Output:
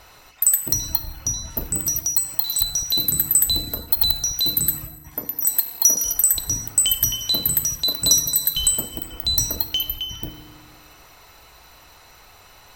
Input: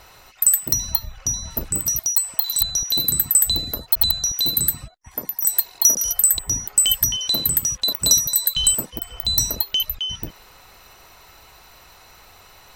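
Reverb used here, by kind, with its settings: FDN reverb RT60 1.7 s, low-frequency decay 1.3×, high-frequency decay 0.6×, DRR 9 dB; trim -1 dB

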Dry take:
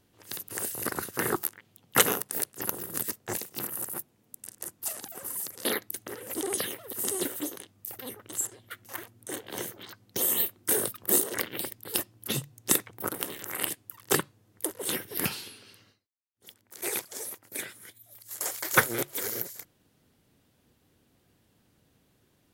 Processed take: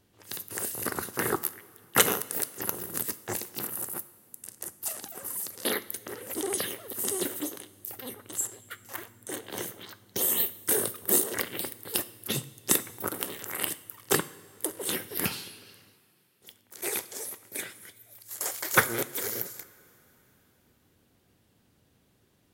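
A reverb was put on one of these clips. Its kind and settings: two-slope reverb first 0.58 s, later 3.6 s, from -16 dB, DRR 13 dB

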